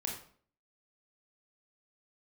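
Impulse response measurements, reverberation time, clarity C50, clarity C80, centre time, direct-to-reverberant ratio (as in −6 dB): 0.50 s, 5.0 dB, 9.0 dB, 31 ms, −0.5 dB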